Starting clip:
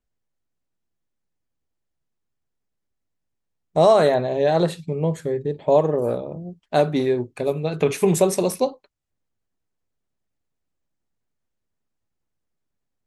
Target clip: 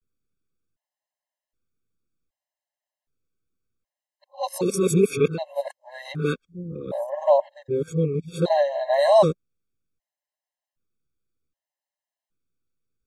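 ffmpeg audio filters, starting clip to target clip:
-af "areverse,afftfilt=real='re*gt(sin(2*PI*0.65*pts/sr)*(1-2*mod(floor(b*sr/1024/540),2)),0)':imag='im*gt(sin(2*PI*0.65*pts/sr)*(1-2*mod(floor(b*sr/1024/540),2)),0)':win_size=1024:overlap=0.75"

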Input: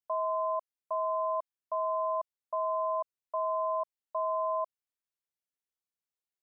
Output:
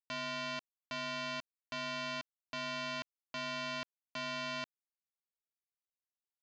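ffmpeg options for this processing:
-af "highpass=f=670:w=0.5412,highpass=f=670:w=1.3066,aresample=16000,acrusher=bits=3:mix=0:aa=0.5,aresample=44100,volume=5.62"

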